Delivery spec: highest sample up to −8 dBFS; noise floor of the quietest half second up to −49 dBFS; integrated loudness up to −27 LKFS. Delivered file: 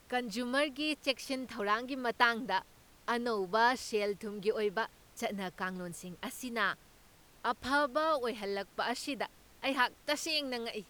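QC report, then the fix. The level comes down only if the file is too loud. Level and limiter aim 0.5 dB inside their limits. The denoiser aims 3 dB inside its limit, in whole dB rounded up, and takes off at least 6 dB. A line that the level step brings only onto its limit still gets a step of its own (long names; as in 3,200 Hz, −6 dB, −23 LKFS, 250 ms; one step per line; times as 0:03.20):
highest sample −12.0 dBFS: in spec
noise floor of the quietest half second −61 dBFS: in spec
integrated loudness −34.0 LKFS: in spec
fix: no processing needed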